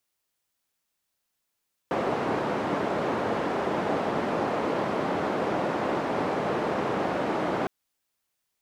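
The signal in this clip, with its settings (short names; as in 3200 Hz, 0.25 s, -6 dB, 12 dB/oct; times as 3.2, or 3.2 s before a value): noise band 190–720 Hz, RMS -27.5 dBFS 5.76 s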